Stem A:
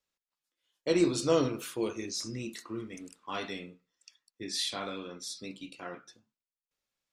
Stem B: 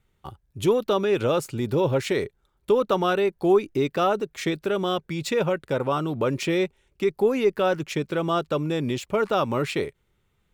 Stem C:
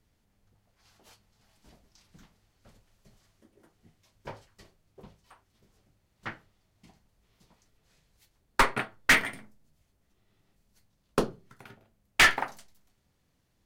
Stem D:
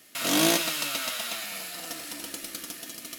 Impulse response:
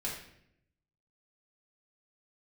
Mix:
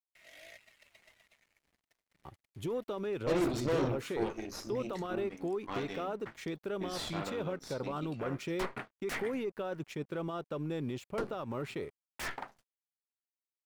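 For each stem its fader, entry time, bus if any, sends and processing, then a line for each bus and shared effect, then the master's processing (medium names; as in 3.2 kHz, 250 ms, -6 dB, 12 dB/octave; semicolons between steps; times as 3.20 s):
-4.0 dB, 2.40 s, no send, peaking EQ 11 kHz -6 dB 0.58 oct; one-sided clip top -21 dBFS; Chebyshev shaper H 5 -23 dB, 6 -13 dB, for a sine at -18.5 dBFS
-9.0 dB, 2.00 s, no send, gate -48 dBFS, range -14 dB; treble shelf 10 kHz +7.5 dB; peak limiter -19 dBFS, peak gain reduction 10 dB
-8.0 dB, 0.00 s, no send, wavefolder -19.5 dBFS
+1.0 dB, 0.00 s, no send, two resonant band-passes 1.1 kHz, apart 1.7 oct; differentiator; reverb removal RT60 0.65 s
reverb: none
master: crossover distortion -57 dBFS; treble shelf 2.8 kHz -9 dB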